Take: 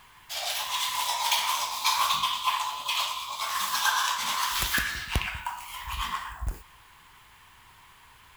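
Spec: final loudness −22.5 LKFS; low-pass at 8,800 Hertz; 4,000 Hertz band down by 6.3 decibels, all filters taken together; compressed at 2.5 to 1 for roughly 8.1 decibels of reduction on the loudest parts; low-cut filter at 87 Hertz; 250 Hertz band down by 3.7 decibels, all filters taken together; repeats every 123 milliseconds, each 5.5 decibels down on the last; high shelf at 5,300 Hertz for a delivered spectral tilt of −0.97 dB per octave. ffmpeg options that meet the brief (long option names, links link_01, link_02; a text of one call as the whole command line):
ffmpeg -i in.wav -af "highpass=87,lowpass=8800,equalizer=frequency=250:width_type=o:gain=-5,equalizer=frequency=4000:width_type=o:gain=-5,highshelf=frequency=5300:gain=-7.5,acompressor=threshold=-35dB:ratio=2.5,aecho=1:1:123|246|369|492|615|738|861:0.531|0.281|0.149|0.079|0.0419|0.0222|0.0118,volume=12.5dB" out.wav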